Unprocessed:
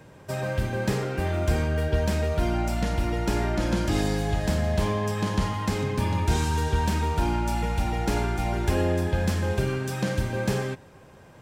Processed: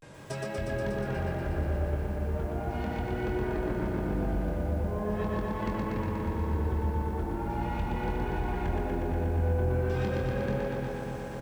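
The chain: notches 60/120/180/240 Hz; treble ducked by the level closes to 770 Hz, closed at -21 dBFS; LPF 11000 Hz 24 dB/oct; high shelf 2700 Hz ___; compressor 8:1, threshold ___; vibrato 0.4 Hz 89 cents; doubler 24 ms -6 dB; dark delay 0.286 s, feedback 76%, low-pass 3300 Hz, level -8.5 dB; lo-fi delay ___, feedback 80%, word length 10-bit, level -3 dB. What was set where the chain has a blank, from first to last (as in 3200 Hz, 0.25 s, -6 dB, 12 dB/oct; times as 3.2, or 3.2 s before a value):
+4 dB, -33 dBFS, 0.12 s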